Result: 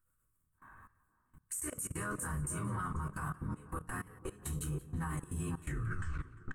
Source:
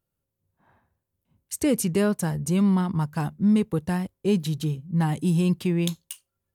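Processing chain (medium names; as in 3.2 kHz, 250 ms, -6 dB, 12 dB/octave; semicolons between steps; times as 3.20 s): tape stop on the ending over 1.09 s; compression 10:1, threshold -34 dBFS, peak gain reduction 17.5 dB; band-passed feedback delay 488 ms, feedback 67%, band-pass 360 Hz, level -4.5 dB; AM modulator 81 Hz, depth 70%; FFT filter 150 Hz 0 dB, 240 Hz -11 dB, 340 Hz -9 dB, 690 Hz -13 dB, 1.2 kHz +11 dB, 3.4 kHz -11 dB, 5.2 kHz -14 dB, 8.2 kHz +9 dB, 13 kHz +2 dB; reverberation RT60 0.25 s, pre-delay 3 ms, DRR -5 dB; dynamic bell 220 Hz, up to -7 dB, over -51 dBFS, Q 1.2; level held to a coarse grid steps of 21 dB; peak limiter -35.5 dBFS, peak gain reduction 6 dB; modulated delay 175 ms, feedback 54%, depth 96 cents, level -19.5 dB; trim +6.5 dB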